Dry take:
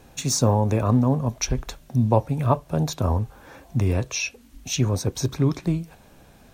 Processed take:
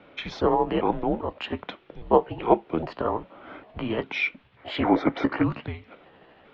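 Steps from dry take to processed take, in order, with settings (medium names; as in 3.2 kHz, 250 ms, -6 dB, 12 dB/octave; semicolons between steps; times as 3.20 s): pitch shift switched off and on +4 st, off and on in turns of 403 ms; mistuned SSB -230 Hz 430–3500 Hz; time-frequency box 4.57–5.43 s, 270–2400 Hz +11 dB; trim +4 dB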